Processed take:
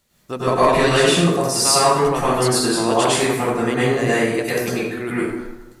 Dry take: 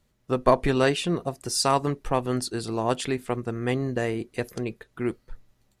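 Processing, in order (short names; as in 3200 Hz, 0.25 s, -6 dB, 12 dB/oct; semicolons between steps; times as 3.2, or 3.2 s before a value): tilt +2 dB/oct; in parallel at -2 dB: negative-ratio compressor -29 dBFS; on the sum: plate-style reverb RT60 1.1 s, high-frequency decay 0.55×, pre-delay 90 ms, DRR -9.5 dB; gain -3.5 dB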